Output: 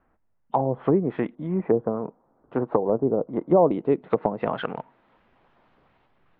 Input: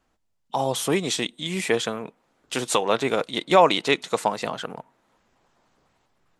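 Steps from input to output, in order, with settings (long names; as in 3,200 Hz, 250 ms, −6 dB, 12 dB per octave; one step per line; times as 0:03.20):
low-pass filter 1,900 Hz 24 dB per octave, from 0:01.35 1,100 Hz, from 0:03.71 3,200 Hz
treble cut that deepens with the level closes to 470 Hz, closed at −20.5 dBFS
level +4 dB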